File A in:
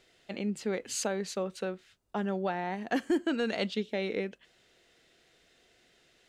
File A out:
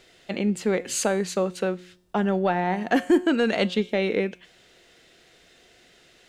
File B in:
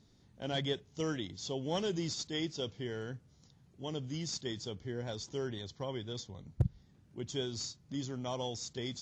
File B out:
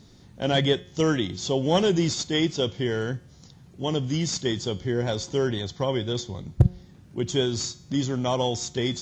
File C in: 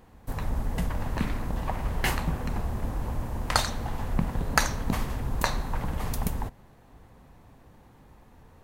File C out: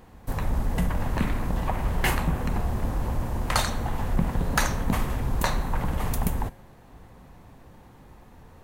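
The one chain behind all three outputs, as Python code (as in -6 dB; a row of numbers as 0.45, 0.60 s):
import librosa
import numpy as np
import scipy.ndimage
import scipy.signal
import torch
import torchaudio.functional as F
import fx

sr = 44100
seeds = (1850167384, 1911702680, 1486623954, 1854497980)

y = fx.dynamic_eq(x, sr, hz=4900.0, q=1.6, threshold_db=-53.0, ratio=4.0, max_db=-5)
y = 10.0 ** (-16.0 / 20.0) * np.tanh(y / 10.0 ** (-16.0 / 20.0))
y = fx.comb_fb(y, sr, f0_hz=180.0, decay_s=0.64, harmonics='all', damping=0.0, mix_pct=50)
y = y * 10.0 ** (-26 / 20.0) / np.sqrt(np.mean(np.square(y)))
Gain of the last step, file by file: +14.5, +19.0, +9.5 dB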